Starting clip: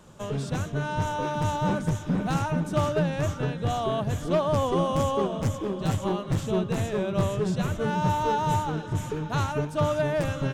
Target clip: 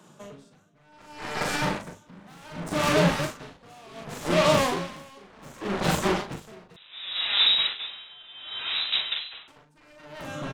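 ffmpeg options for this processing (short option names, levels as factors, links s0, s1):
-filter_complex "[0:a]highpass=f=150:w=0.5412,highpass=f=150:w=1.3066,bandreject=f=520:w=12,alimiter=limit=0.1:level=0:latency=1:release=159,dynaudnorm=f=280:g=11:m=3.55,aeval=exprs='0.355*(cos(1*acos(clip(val(0)/0.355,-1,1)))-cos(1*PI/2))+0.0316*(cos(3*acos(clip(val(0)/0.355,-1,1)))-cos(3*PI/2))+0.0708*(cos(7*acos(clip(val(0)/0.355,-1,1)))-cos(7*PI/2))':c=same,asoftclip=type=tanh:threshold=0.106,asplit=2[s0][s1];[s1]adelay=40,volume=0.631[s2];[s0][s2]amix=inputs=2:normalize=0,asettb=1/sr,asplit=3[s3][s4][s5];[s3]atrim=end=6.764[s6];[s4]atrim=start=6.76:end=9.48,asetpts=PTS-STARTPTS,afade=t=in:d=0.004:c=qsin,afade=t=out:st=2.716:d=0.004:c=qsin,lowpass=f=3400:t=q:w=0.5098,lowpass=f=3400:t=q:w=0.6013,lowpass=f=3400:t=q:w=0.9,lowpass=f=3400:t=q:w=2.563,afreqshift=-4000[s7];[s5]atrim=start=9.476[s8];[s6][s7]acrossfade=d=0.004:c1=hsin:c2=qsin[s9];[s9][s8]acrossfade=d=0.004:c1=qsin:c2=hsin,aeval=exprs='val(0)*pow(10,-29*(0.5-0.5*cos(2*PI*0.67*n/s))/20)':c=same,volume=1.5"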